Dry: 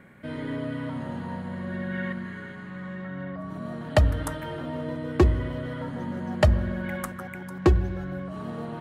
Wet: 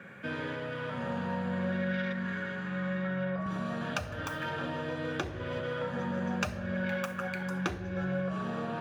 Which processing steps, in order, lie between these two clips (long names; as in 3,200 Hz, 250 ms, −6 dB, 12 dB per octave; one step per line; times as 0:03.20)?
phase distortion by the signal itself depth 0.27 ms
low-shelf EQ 460 Hz −12 dB
downward compressor 5 to 1, threshold −39 dBFS, peak gain reduction 17.5 dB
convolution reverb RT60 0.55 s, pre-delay 3 ms, DRR 5 dB
0:03.46–0:05.60: multiband upward and downward compressor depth 40%